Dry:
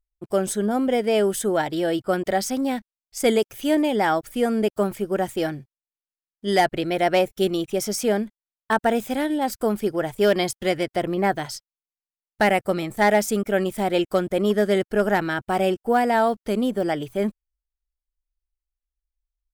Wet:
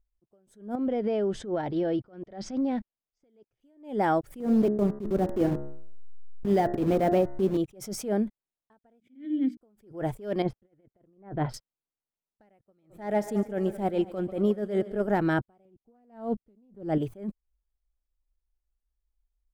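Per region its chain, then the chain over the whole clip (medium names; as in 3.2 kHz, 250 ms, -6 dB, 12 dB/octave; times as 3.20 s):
0.75–3.61 s: low-pass 5.6 kHz 24 dB/octave + compression 10:1, threshold -29 dBFS
4.40–7.57 s: send-on-delta sampling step -26 dBFS + peaking EQ 220 Hz +7.5 dB 2.2 oct + de-hum 70.21 Hz, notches 29
9.00–9.57 s: vowel filter i + hum notches 60/120/180/240/300/360 Hz
10.42–11.54 s: compressor with a negative ratio -25 dBFS, ratio -0.5 + distance through air 400 m + tape noise reduction on one side only decoder only
12.65–15.08 s: multi-head delay 71 ms, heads second and third, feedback 47%, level -18 dB + upward expansion, over -32 dBFS
15.65–16.98 s: bass shelf 400 Hz +11 dB + loudspeaker Doppler distortion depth 0.17 ms
whole clip: tilt shelf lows +7.5 dB, about 1.2 kHz; compression, threshold -20 dBFS; attacks held to a fixed rise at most 150 dB/s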